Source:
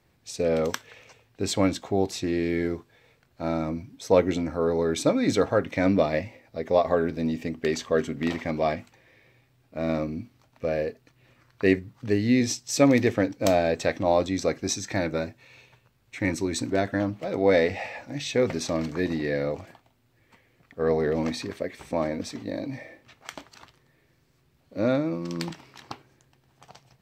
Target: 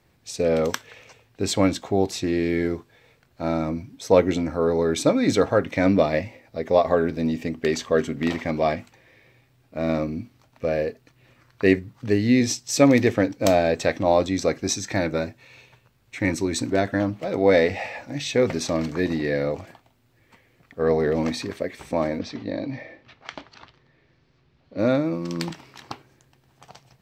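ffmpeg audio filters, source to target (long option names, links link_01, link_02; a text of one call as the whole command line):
ffmpeg -i in.wav -filter_complex "[0:a]asettb=1/sr,asplit=3[link_01][link_02][link_03];[link_01]atrim=end=22.194[link_04];[link_02]atrim=start=22.19:end=24.79,asetpts=PTS-STARTPTS,afade=type=in:duration=0.004:curve=qsin,afade=type=out:start_time=2.596:duration=0.004:curve=qsin,lowpass=frequency=5000:width=0.5412,lowpass=frequency=5000:width=1.3066[link_05];[link_03]atrim=start=24.786[link_06];[link_04][link_05]acrossfade=duration=0.004:curve1=hsin:curve2=qsin[link_07];[link_07][link_06]acrossfade=duration=0.004:curve1=qsin:curve2=hsin,volume=3dB" out.wav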